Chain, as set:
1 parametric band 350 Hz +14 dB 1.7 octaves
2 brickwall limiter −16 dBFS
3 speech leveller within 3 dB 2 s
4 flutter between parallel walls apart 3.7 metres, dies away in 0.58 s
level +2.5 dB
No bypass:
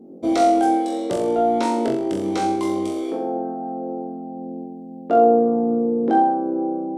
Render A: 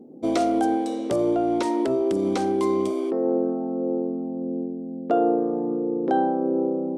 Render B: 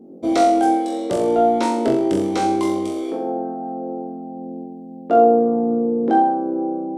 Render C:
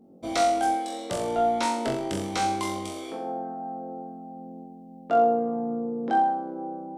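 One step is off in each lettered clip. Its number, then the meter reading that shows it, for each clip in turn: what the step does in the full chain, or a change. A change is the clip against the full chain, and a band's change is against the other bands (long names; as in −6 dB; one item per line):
4, echo-to-direct ratio 1.5 dB to none audible
2, change in integrated loudness +1.5 LU
1, 250 Hz band −9.5 dB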